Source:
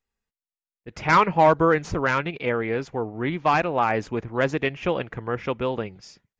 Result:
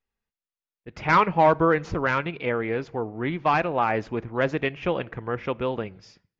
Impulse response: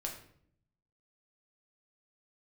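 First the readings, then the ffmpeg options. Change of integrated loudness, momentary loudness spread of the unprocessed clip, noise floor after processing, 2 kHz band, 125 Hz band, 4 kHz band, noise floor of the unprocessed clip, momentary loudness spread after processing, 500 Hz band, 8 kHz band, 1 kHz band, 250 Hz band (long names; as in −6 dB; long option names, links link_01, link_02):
−1.5 dB, 11 LU, below −85 dBFS, −1.5 dB, −1.0 dB, −2.5 dB, below −85 dBFS, 11 LU, −1.5 dB, can't be measured, −1.0 dB, −1.0 dB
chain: -filter_complex "[0:a]lowpass=4600,asplit=2[link_01][link_02];[1:a]atrim=start_sample=2205,afade=type=out:start_time=0.38:duration=0.01,atrim=end_sample=17199[link_03];[link_02][link_03]afir=irnorm=-1:irlink=0,volume=-18dB[link_04];[link_01][link_04]amix=inputs=2:normalize=0,volume=-2dB"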